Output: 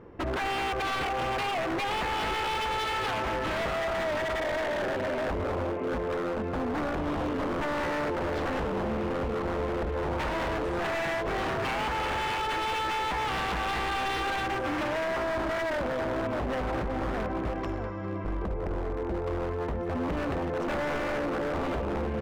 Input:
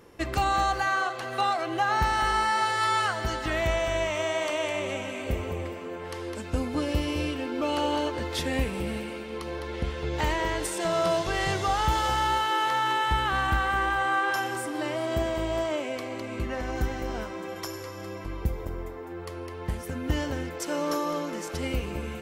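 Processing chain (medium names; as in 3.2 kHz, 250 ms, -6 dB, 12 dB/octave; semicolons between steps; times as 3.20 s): low-pass 1.7 kHz 12 dB/octave; bass shelf 450 Hz +5 dB; echo from a far wall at 110 m, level -8 dB; dynamic bell 580 Hz, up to +7 dB, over -39 dBFS, Q 0.76; compression 3:1, threshold -25 dBFS, peak gain reduction 8.5 dB; wavefolder -26.5 dBFS; trim +1.5 dB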